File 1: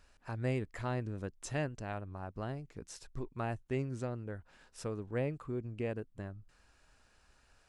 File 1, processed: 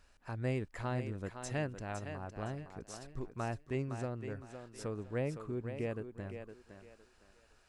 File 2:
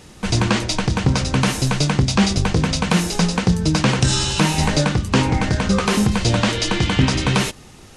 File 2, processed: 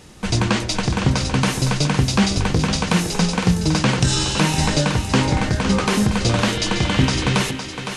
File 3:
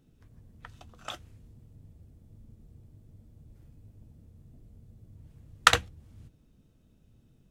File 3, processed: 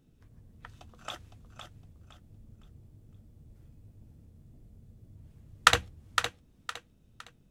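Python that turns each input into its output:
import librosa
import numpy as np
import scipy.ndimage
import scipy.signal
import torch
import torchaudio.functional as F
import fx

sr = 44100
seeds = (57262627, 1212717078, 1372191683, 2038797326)

y = fx.echo_thinned(x, sr, ms=511, feedback_pct=30, hz=240.0, wet_db=-7.5)
y = F.gain(torch.from_numpy(y), -1.0).numpy()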